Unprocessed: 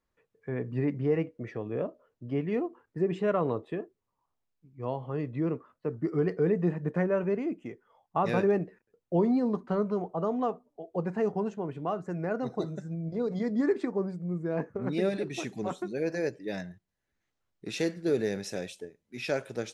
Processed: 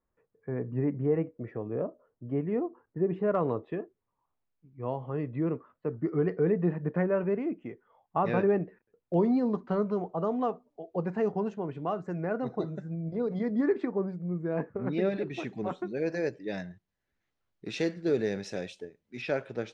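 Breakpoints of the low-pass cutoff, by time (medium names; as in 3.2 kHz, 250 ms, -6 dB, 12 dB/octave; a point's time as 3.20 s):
1.4 kHz
from 3.35 s 2.6 kHz
from 9.14 s 5.1 kHz
from 12.20 s 3 kHz
from 15.97 s 5.1 kHz
from 19.22 s 3.2 kHz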